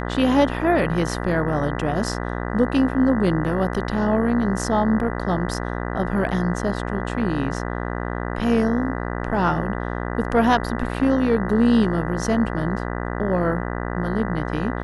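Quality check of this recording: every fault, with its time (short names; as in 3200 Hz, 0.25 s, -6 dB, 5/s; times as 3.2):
buzz 60 Hz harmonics 33 -27 dBFS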